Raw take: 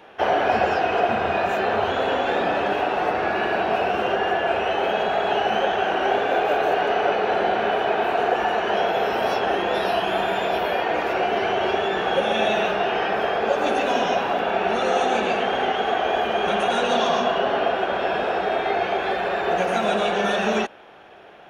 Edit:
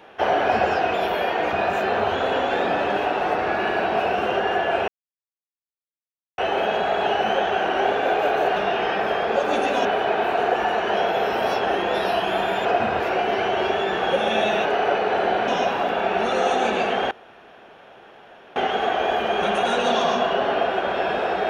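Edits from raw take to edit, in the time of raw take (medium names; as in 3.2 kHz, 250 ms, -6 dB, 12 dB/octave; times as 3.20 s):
0.94–1.29 s: swap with 10.45–11.04 s
4.64 s: insert silence 1.50 s
6.82–7.65 s: swap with 12.69–13.98 s
15.61 s: insert room tone 1.45 s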